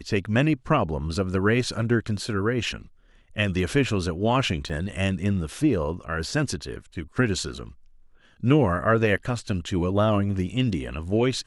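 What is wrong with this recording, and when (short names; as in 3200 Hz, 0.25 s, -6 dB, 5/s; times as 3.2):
4.69–4.7 gap 6 ms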